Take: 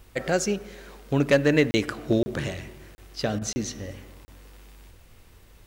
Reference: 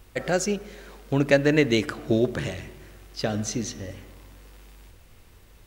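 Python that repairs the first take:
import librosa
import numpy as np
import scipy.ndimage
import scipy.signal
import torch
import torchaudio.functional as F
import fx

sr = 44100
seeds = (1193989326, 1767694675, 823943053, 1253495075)

y = fx.fix_declip(x, sr, threshold_db=-10.5)
y = fx.fix_interpolate(y, sr, at_s=(1.71, 2.23, 2.95, 3.53, 4.25), length_ms=30.0)
y = fx.fix_interpolate(y, sr, at_s=(3.39,), length_ms=24.0)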